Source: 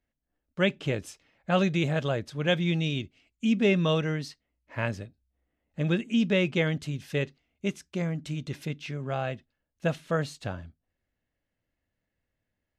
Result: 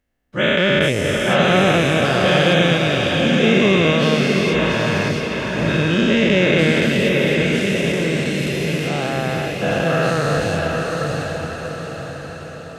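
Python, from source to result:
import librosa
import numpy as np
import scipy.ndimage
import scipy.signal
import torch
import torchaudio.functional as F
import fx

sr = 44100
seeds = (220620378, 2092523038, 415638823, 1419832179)

p1 = fx.spec_dilate(x, sr, span_ms=480)
p2 = p1 + fx.echo_diffused(p1, sr, ms=739, feedback_pct=53, wet_db=-3, dry=0)
y = p2 * librosa.db_to_amplitude(2.5)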